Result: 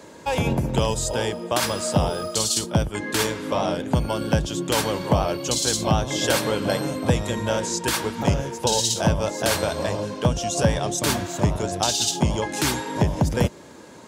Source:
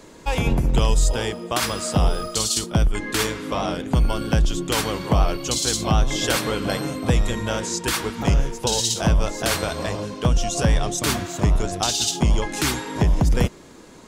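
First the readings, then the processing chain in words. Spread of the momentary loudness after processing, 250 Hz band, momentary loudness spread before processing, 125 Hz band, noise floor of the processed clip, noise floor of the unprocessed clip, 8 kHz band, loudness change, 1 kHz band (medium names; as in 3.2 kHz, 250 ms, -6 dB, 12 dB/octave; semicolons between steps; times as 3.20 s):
4 LU, 0.0 dB, 5 LU, -2.0 dB, -44 dBFS, -44 dBFS, 0.0 dB, -1.0 dB, +1.0 dB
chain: high-pass 70 Hz 24 dB/octave; dynamic bell 1.6 kHz, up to -3 dB, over -36 dBFS, Q 0.88; small resonant body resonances 580/890/1600 Hz, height 6 dB, ringing for 25 ms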